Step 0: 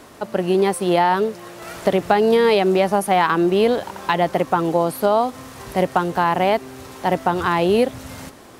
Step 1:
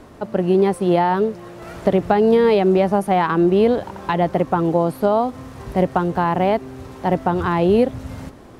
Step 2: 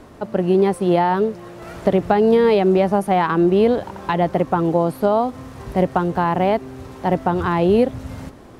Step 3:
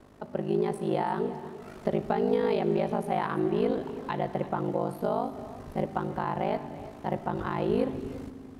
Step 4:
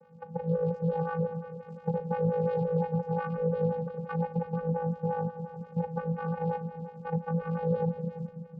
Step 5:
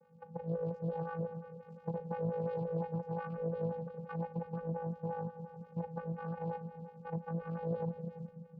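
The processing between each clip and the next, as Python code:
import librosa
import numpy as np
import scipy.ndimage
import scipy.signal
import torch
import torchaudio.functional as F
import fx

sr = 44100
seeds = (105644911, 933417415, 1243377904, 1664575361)

y1 = fx.tilt_eq(x, sr, slope=-2.5)
y1 = y1 * librosa.db_to_amplitude(-2.0)
y2 = y1
y3 = y2 * np.sin(2.0 * np.pi * 26.0 * np.arange(len(y2)) / sr)
y3 = y3 + 10.0 ** (-16.0 / 20.0) * np.pad(y3, (int(334 * sr / 1000.0), 0))[:len(y3)]
y3 = fx.rev_fdn(y3, sr, rt60_s=1.9, lf_ratio=1.6, hf_ratio=1.0, size_ms=23.0, drr_db=11.0)
y3 = y3 * librosa.db_to_amplitude(-9.0)
y4 = 10.0 ** (-21.0 / 20.0) * np.tanh(y3 / 10.0 ** (-21.0 / 20.0))
y4 = fx.vocoder(y4, sr, bands=8, carrier='square', carrier_hz=166.0)
y4 = fx.stagger_phaser(y4, sr, hz=5.7)
y4 = y4 * librosa.db_to_amplitude(5.0)
y5 = fx.doppler_dist(y4, sr, depth_ms=0.14)
y5 = y5 * librosa.db_to_amplitude(-8.0)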